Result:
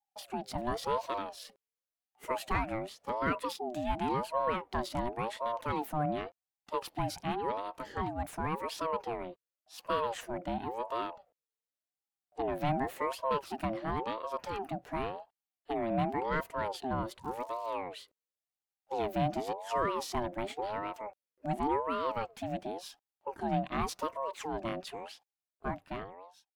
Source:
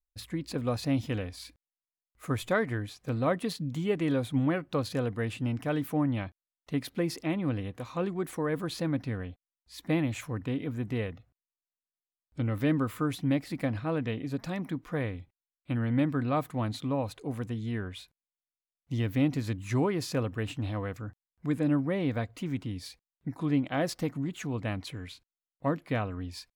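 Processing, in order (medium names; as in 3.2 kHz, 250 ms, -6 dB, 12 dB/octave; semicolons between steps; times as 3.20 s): fade out at the end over 1.28 s; 17.22–17.73 s: crackle 430 per s -46 dBFS; in parallel at -9 dB: saturation -32 dBFS, distortion -7 dB; on the sum: ring modulator with a swept carrier 630 Hz, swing 30%, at 0.91 Hz; trim -2.5 dB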